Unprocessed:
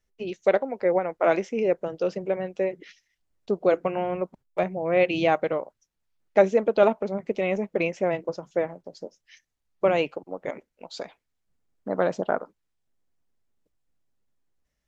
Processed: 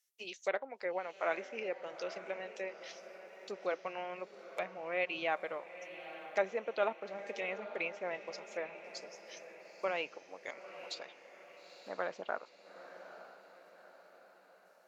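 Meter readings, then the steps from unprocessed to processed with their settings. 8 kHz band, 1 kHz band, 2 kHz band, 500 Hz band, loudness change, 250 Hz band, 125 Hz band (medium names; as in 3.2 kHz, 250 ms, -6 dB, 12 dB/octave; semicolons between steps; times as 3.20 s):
no reading, -11.0 dB, -6.5 dB, -15.0 dB, -14.0 dB, -20.5 dB, -24.5 dB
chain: differentiator; low-pass that closes with the level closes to 2 kHz, closed at -41.5 dBFS; echo that smears into a reverb 891 ms, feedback 50%, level -12 dB; trim +7 dB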